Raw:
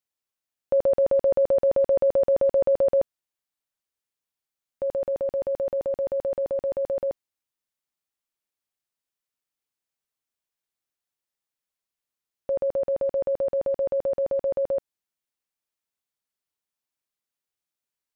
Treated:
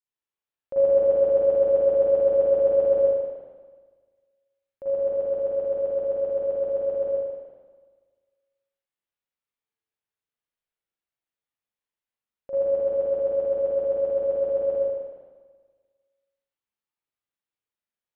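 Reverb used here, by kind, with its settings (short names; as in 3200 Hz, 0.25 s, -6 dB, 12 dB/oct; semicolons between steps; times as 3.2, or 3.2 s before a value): spring tank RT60 1.5 s, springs 38/47/56 ms, chirp 45 ms, DRR -9.5 dB; gain -11.5 dB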